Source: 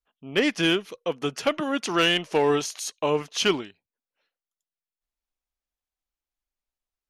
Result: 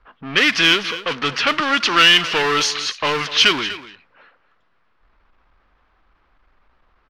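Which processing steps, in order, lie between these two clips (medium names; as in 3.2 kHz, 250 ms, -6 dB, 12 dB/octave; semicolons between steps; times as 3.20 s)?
power-law waveshaper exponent 0.5; level-controlled noise filter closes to 840 Hz, open at -15 dBFS; high-order bell 2.4 kHz +13 dB 2.7 oct; on a send: delay 244 ms -15.5 dB; on the sum: trim -5 dB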